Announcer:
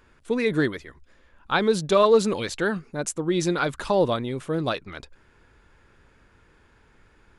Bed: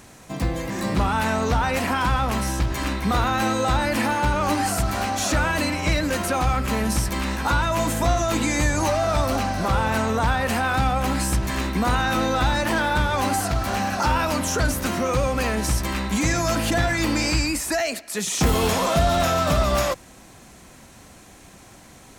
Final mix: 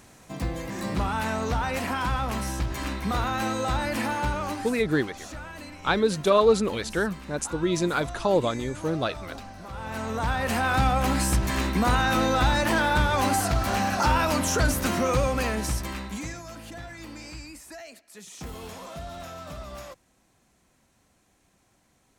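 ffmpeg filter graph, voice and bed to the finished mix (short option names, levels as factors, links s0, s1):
-filter_complex "[0:a]adelay=4350,volume=0.841[s0];[1:a]volume=3.76,afade=t=out:st=4.27:d=0.5:silence=0.237137,afade=t=in:st=9.72:d=1.07:silence=0.141254,afade=t=out:st=15.09:d=1.34:silence=0.125893[s1];[s0][s1]amix=inputs=2:normalize=0"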